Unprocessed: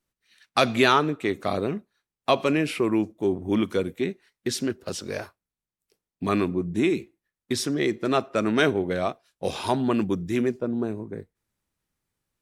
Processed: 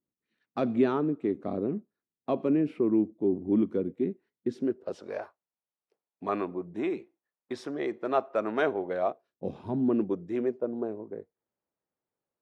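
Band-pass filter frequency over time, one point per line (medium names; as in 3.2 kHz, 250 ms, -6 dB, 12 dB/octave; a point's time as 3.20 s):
band-pass filter, Q 1.3
4.48 s 270 Hz
5.11 s 740 Hz
9.00 s 740 Hz
9.64 s 150 Hz
10.15 s 560 Hz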